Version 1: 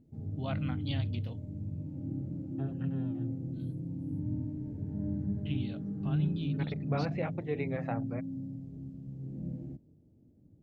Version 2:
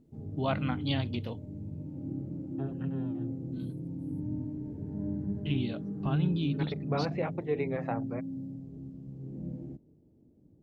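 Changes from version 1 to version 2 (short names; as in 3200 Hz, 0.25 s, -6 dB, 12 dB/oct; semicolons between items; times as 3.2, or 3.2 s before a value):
first voice +6.0 dB; master: add fifteen-band EQ 100 Hz -4 dB, 400 Hz +5 dB, 1000 Hz +5 dB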